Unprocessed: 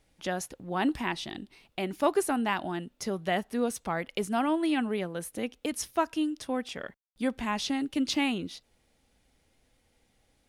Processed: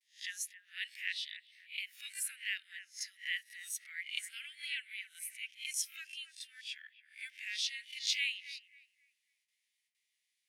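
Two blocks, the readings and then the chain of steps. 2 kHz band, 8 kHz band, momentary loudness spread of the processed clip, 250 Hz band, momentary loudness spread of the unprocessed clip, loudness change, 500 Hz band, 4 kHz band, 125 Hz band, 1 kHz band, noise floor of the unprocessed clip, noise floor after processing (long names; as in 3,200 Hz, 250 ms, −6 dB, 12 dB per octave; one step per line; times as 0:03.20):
−3.0 dB, −0.5 dB, 11 LU, below −40 dB, 9 LU, −8.5 dB, below −40 dB, −0.5 dB, below −40 dB, below −40 dB, −71 dBFS, −84 dBFS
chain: peak hold with a rise ahead of every peak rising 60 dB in 0.34 s
noise gate with hold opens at −58 dBFS
Butterworth high-pass 1,800 Hz 72 dB per octave
noise reduction from a noise print of the clip's start 8 dB
bucket-brigade delay 272 ms, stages 4,096, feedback 33%, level −12.5 dB
level −2 dB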